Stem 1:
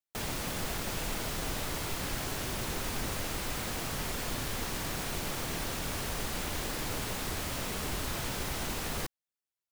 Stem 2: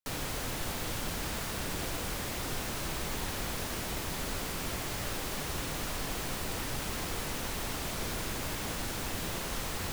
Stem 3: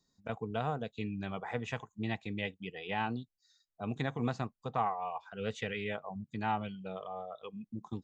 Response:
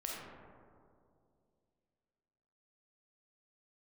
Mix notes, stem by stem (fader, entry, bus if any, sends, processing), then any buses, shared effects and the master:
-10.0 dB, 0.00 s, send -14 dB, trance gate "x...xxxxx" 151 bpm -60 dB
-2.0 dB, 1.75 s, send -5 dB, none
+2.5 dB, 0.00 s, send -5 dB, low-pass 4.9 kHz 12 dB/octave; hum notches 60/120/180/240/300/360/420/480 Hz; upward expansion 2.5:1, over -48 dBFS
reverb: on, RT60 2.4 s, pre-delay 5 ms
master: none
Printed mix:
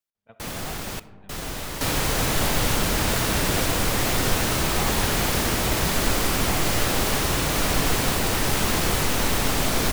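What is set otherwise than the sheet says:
stem 1 -10.0 dB -> +2.0 dB; stem 2 -2.0 dB -> +9.5 dB; stem 3 +2.5 dB -> -4.0 dB

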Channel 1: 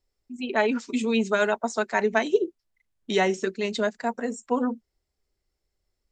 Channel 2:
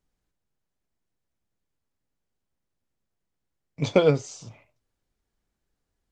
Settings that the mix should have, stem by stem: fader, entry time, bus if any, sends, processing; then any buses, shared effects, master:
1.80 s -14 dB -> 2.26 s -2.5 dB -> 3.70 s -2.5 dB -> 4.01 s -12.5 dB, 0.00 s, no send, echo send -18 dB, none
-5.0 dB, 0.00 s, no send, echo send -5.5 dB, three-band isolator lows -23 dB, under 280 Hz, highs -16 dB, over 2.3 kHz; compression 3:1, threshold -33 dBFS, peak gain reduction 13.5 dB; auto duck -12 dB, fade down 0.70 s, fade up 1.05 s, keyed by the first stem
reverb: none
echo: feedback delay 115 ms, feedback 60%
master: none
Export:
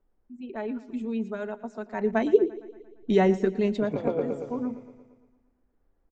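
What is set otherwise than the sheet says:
stem 2 -5.0 dB -> +4.5 dB; master: extra tilt EQ -4 dB/octave

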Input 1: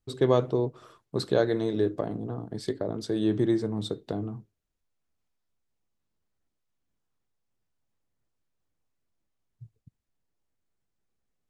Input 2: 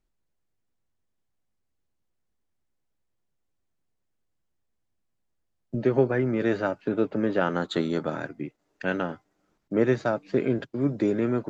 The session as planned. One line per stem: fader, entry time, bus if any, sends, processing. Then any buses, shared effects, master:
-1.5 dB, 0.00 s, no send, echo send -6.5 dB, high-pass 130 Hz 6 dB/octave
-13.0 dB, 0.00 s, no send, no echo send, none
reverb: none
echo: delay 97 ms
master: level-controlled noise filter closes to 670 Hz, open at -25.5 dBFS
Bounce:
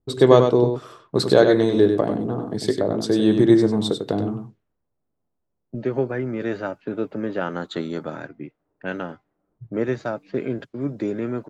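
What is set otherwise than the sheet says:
stem 1 -1.5 dB -> +9.5 dB; stem 2 -13.0 dB -> -1.5 dB

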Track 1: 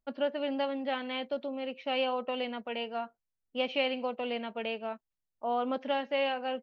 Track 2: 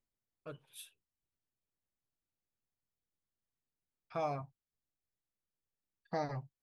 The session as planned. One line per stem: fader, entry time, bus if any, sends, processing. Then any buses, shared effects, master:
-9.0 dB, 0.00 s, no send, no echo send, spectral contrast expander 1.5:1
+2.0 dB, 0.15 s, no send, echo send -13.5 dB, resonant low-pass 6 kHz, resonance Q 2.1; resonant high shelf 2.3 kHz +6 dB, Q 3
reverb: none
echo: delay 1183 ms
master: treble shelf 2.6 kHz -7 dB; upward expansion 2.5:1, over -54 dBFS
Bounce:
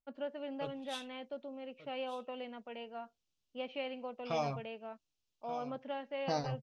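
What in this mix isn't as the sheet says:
stem 1: missing spectral contrast expander 1.5:1; master: missing upward expansion 2.5:1, over -54 dBFS

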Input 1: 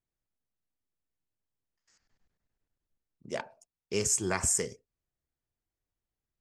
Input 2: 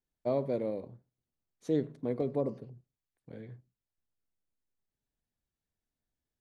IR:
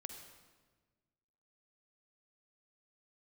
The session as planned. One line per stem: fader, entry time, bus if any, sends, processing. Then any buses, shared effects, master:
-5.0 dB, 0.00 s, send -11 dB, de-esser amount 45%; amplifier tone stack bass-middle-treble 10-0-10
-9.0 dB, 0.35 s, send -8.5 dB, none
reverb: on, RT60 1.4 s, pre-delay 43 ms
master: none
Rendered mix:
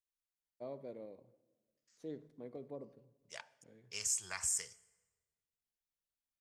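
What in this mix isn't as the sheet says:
stem 2 -9.0 dB -> -16.0 dB; master: extra bass shelf 150 Hz -8.5 dB

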